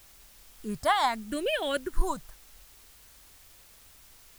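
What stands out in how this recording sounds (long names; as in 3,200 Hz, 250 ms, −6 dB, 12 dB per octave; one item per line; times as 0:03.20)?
phaser sweep stages 4, 0.8 Hz, lowest notch 400–1,100 Hz
a quantiser's noise floor 10 bits, dither triangular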